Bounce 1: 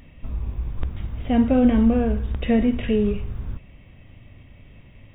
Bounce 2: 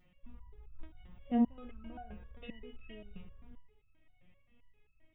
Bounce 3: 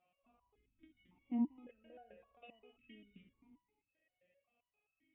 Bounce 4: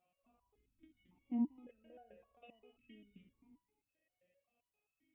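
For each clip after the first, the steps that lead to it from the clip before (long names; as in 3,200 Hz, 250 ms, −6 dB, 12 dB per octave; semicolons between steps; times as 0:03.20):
spring reverb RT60 1.9 s, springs 60 ms, chirp 80 ms, DRR 17 dB; step-sequenced resonator 7.6 Hz 180–1,300 Hz; level −5 dB
formant filter that steps through the vowels 1.8 Hz; level +5 dB
parametric band 1,900 Hz −4.5 dB 2.3 octaves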